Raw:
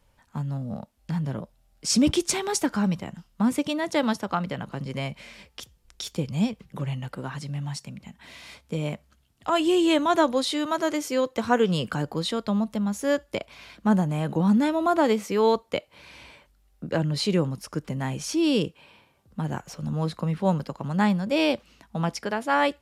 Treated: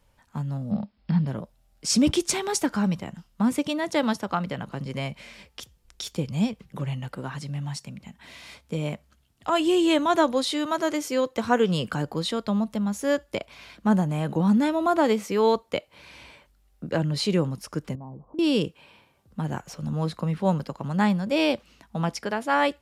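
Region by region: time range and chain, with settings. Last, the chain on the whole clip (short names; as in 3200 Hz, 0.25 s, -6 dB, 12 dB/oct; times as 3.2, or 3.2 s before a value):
0.71–1.27 CVSD 64 kbps + brick-wall FIR low-pass 5400 Hz + bell 200 Hz +12 dB 0.43 oct
17.95–18.39 Chebyshev low-pass 1100 Hz, order 6 + compressor, threshold -37 dBFS
whole clip: dry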